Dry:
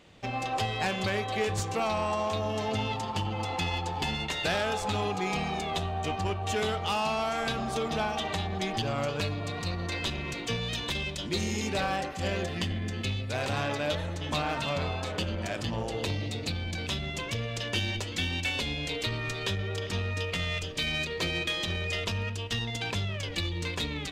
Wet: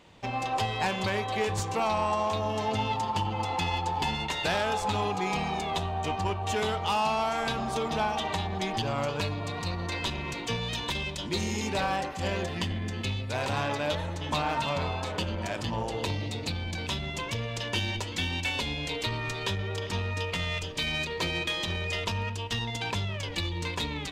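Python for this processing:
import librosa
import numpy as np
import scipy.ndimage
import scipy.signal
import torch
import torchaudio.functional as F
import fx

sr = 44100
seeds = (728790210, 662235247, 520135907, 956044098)

y = fx.peak_eq(x, sr, hz=940.0, db=8.5, octaves=0.27)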